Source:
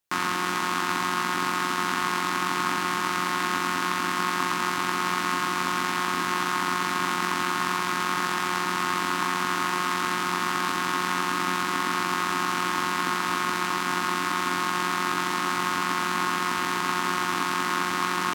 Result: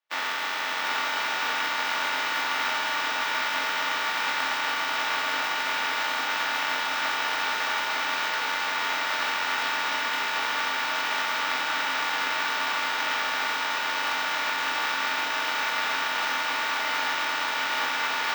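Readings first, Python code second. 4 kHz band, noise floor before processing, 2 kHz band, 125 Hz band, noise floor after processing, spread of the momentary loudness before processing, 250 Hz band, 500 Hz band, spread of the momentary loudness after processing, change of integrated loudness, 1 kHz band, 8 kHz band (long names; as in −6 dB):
+3.0 dB, −28 dBFS, +2.0 dB, below −15 dB, −29 dBFS, 0 LU, −13.0 dB, −2.0 dB, 1 LU, 0.0 dB, −3.0 dB, −4.0 dB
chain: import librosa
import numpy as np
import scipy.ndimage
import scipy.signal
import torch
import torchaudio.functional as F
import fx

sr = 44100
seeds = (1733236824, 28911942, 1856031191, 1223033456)

y = fx.spec_flatten(x, sr, power=0.19)
y = np.clip(10.0 ** (13.5 / 20.0) * y, -1.0, 1.0) / 10.0 ** (13.5 / 20.0)
y = fx.bandpass_edges(y, sr, low_hz=670.0, high_hz=3100.0)
y = y + 10.0 ** (-3.5 / 20.0) * np.pad(y, (int(718 * sr / 1000.0), 0))[:len(y)]
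y = fx.room_shoebox(y, sr, seeds[0], volume_m3=260.0, walls='furnished', distance_m=2.5)
y = np.repeat(scipy.signal.resample_poly(y, 1, 2), 2)[:len(y)]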